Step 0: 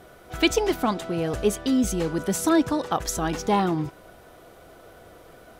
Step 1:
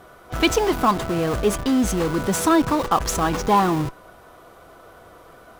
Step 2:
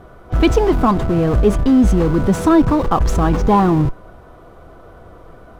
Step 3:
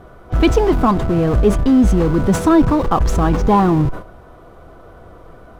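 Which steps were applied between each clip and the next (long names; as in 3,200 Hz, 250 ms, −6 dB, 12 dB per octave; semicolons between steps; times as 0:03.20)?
parametric band 1,100 Hz +9 dB 0.67 octaves; in parallel at −5.5 dB: comparator with hysteresis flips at −30 dBFS
spectral tilt −3 dB per octave; level +1.5 dB
level that may fall only so fast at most 140 dB per second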